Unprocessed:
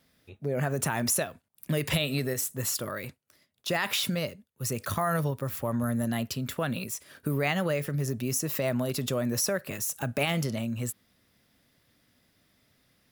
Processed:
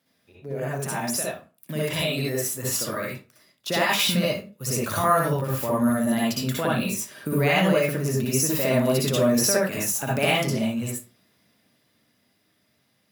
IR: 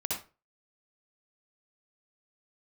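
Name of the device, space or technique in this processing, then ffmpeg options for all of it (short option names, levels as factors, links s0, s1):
far laptop microphone: -filter_complex "[1:a]atrim=start_sample=2205[s0];[0:a][s0]afir=irnorm=-1:irlink=0,highpass=140,dynaudnorm=f=300:g=17:m=3.76,volume=0.596"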